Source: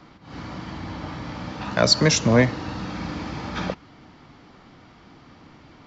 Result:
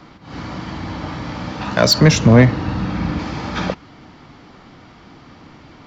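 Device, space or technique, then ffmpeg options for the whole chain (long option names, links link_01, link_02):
saturation between pre-emphasis and de-emphasis: -filter_complex "[0:a]asettb=1/sr,asplit=3[link_01][link_02][link_03];[link_01]atrim=end=1.984[link_04];[link_02]atrim=start=1.98:end=3.19,asetpts=PTS-STARTPTS,afade=type=in:duration=0.004:curve=qsin,afade=type=out:start_time=1.206:duration=0.004:curve=qsin,bass=frequency=250:gain=6,treble=frequency=4000:gain=-7[link_05];[link_03]atrim=start=3.186[link_06];[link_04][link_05]acrossfade=duration=0.004:curve1=hsin:curve2=qsin[link_07];[link_07][link_06]acrossfade=duration=0.004:curve1=qsin:curve2=hsin,highshelf=frequency=3000:gain=8,asoftclip=type=tanh:threshold=-6.5dB,highshelf=frequency=3000:gain=-8,volume=6dB"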